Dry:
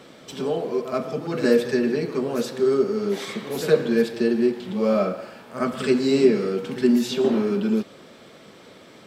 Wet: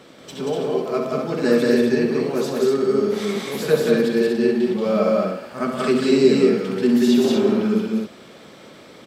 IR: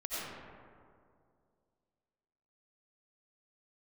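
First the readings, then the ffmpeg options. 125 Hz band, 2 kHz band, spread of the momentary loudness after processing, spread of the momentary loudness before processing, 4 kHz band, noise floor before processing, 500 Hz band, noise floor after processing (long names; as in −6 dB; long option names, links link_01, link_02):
+3.0 dB, +3.5 dB, 9 LU, 9 LU, +3.5 dB, −48 dBFS, +3.0 dB, −44 dBFS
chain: -af "aecho=1:1:67.06|183.7|242:0.398|0.794|0.631"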